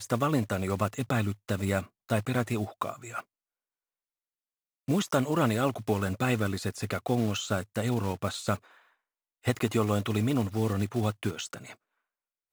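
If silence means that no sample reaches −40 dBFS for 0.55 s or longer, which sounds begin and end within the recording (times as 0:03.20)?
0:04.88–0:08.56
0:09.45–0:11.73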